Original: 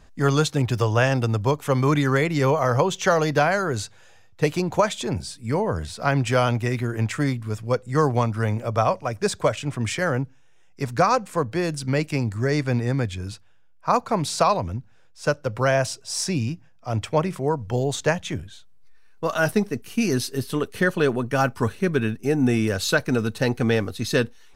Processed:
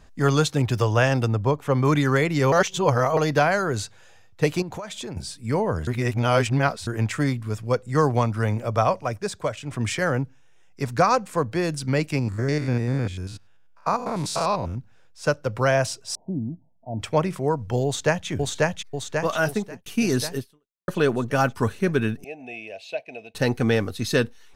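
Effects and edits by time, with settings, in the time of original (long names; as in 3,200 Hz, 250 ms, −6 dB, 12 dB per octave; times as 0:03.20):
0:01.28–0:01.85: high-shelf EQ 3,000 Hz −10.5 dB
0:02.52–0:03.17: reverse
0:04.62–0:05.17: downward compressor 8 to 1, threshold −30 dBFS
0:05.87–0:06.87: reverse
0:09.18–0:09.71: clip gain −5.5 dB
0:12.19–0:14.78: spectrum averaged block by block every 100 ms
0:16.15–0:17.00: Chebyshev low-pass with heavy ripple 930 Hz, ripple 9 dB
0:17.85–0:18.28: delay throw 540 ms, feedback 60%, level −0.5 dB
0:19.35–0:19.86: fade out
0:20.37–0:20.88: fade out exponential
0:22.24–0:23.35: pair of resonant band-passes 1,300 Hz, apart 1.9 octaves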